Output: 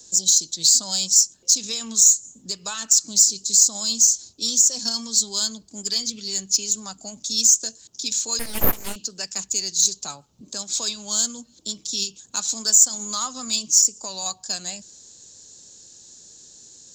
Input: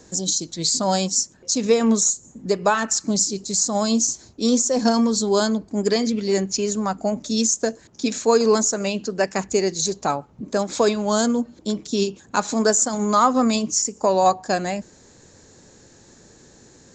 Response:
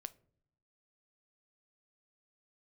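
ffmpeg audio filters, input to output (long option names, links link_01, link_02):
-filter_complex "[0:a]acrossover=split=190|1000|2100[link_01][link_02][link_03][link_04];[link_02]acompressor=threshold=-32dB:ratio=6[link_05];[link_01][link_05][link_03][link_04]amix=inputs=4:normalize=0,aexciter=amount=5.9:drive=7.3:freq=3000,asettb=1/sr,asplit=3[link_06][link_07][link_08];[link_06]atrim=end=8.394[link_09];[link_07]atrim=start=8.39:end=8.96,asetpts=PTS-STARTPTS,afade=type=in:duration=0.004:curve=qsin,afade=type=out:start_time=0.566:duration=0.004:curve=qsin,aeval=exprs='abs(val(0))':channel_layout=same[link_10];[link_08]atrim=start=8.956[link_11];[link_09][link_10]acrossfade=duration=0.004:curve1=hsin:curve2=qsin[link_12];[link_12][link_11]acrossfade=duration=0.004:curve1=qsin:curve2=hsin,volume=-11.5dB"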